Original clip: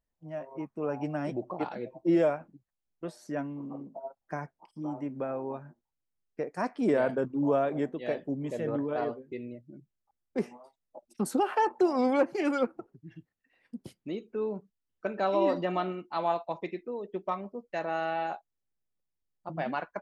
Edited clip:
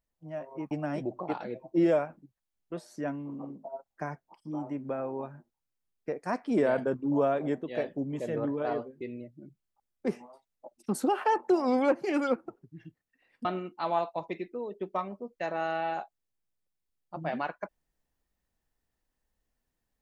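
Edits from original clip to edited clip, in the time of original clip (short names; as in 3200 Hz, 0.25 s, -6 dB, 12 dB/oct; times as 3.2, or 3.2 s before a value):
0.71–1.02 cut
13.76–15.78 cut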